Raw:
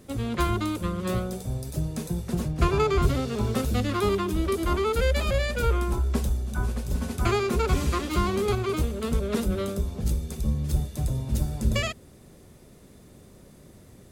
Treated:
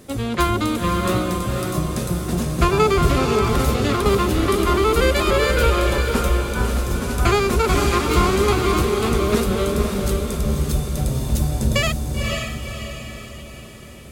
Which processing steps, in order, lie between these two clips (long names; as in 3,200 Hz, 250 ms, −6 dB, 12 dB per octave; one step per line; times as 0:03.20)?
low-shelf EQ 280 Hz −5 dB
0:03.23–0:04.06: compressor whose output falls as the input rises −29 dBFS, ratio −0.5
feedback delay with all-pass diffusion 523 ms, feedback 49%, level −3.5 dB
level +8 dB